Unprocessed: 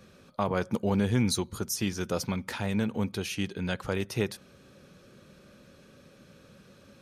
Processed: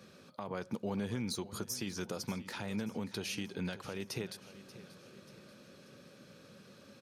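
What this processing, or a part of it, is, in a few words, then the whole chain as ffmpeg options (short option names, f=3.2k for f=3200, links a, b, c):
broadcast voice chain: -af "highpass=120,deesser=0.5,acompressor=threshold=-32dB:ratio=3,equalizer=f=4.7k:t=o:w=0.47:g=4,alimiter=level_in=1.5dB:limit=-24dB:level=0:latency=1:release=220,volume=-1.5dB,aecho=1:1:585|1170|1755|2340:0.158|0.0792|0.0396|0.0198,volume=-1.5dB"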